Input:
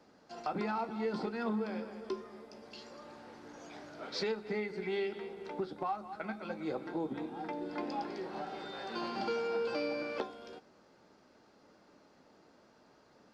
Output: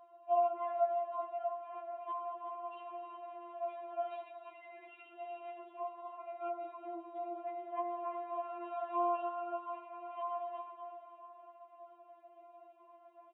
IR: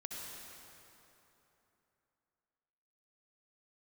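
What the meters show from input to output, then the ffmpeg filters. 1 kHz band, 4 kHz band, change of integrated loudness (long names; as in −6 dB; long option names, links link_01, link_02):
+3.5 dB, below −15 dB, −1.5 dB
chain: -filter_complex "[0:a]highshelf=frequency=2300:gain=-9.5,aecho=1:1:368:0.282,asplit=2[link_01][link_02];[1:a]atrim=start_sample=2205[link_03];[link_02][link_03]afir=irnorm=-1:irlink=0,volume=-1.5dB[link_04];[link_01][link_04]amix=inputs=2:normalize=0,acompressor=threshold=-36dB:ratio=6,asplit=2[link_05][link_06];[link_06]alimiter=level_in=8.5dB:limit=-24dB:level=0:latency=1,volume=-8.5dB,volume=0dB[link_07];[link_05][link_07]amix=inputs=2:normalize=0,asplit=3[link_08][link_09][link_10];[link_08]bandpass=frequency=730:width_type=q:width=8,volume=0dB[link_11];[link_09]bandpass=frequency=1090:width_type=q:width=8,volume=-6dB[link_12];[link_10]bandpass=frequency=2440:width_type=q:width=8,volume=-9dB[link_13];[link_11][link_12][link_13]amix=inputs=3:normalize=0,lowshelf=frequency=200:gain=-10,aecho=1:1:4.8:0.45,aresample=8000,aresample=44100,afftfilt=real='re*4*eq(mod(b,16),0)':imag='im*4*eq(mod(b,16),0)':win_size=2048:overlap=0.75,volume=8dB"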